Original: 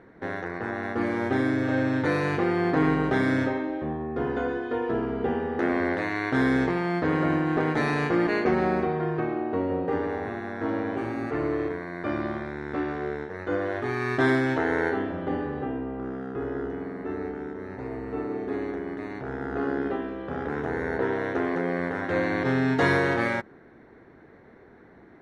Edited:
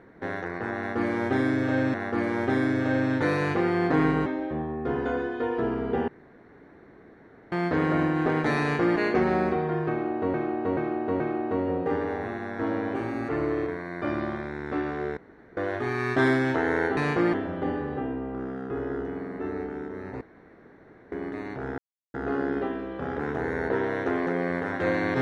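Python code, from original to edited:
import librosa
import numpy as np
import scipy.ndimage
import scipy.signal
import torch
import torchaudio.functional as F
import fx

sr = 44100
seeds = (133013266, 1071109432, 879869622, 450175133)

y = fx.edit(x, sr, fx.repeat(start_s=0.77, length_s=1.17, count=2),
    fx.cut(start_s=3.09, length_s=0.48),
    fx.room_tone_fill(start_s=5.39, length_s=1.44),
    fx.duplicate(start_s=7.91, length_s=0.37, to_s=14.99),
    fx.repeat(start_s=9.22, length_s=0.43, count=4),
    fx.room_tone_fill(start_s=13.19, length_s=0.4),
    fx.room_tone_fill(start_s=17.86, length_s=0.91),
    fx.insert_silence(at_s=19.43, length_s=0.36), tone=tone)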